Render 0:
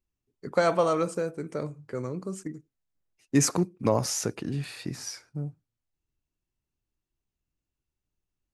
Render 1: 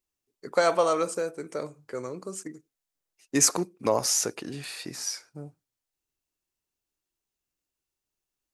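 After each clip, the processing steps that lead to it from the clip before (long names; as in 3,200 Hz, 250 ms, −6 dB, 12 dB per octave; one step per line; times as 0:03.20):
bass and treble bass −13 dB, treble +5 dB
level +1.5 dB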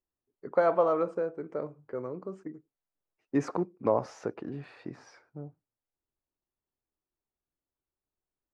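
low-pass filter 1,200 Hz 12 dB per octave
level −1 dB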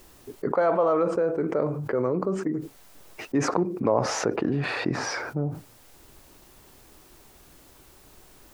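envelope flattener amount 70%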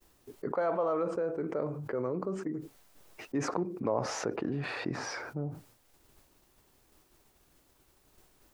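downward expander −48 dBFS
level −8 dB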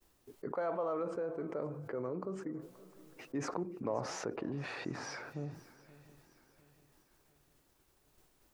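feedback echo with a long and a short gap by turns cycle 704 ms, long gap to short 3 to 1, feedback 41%, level −20 dB
level −5.5 dB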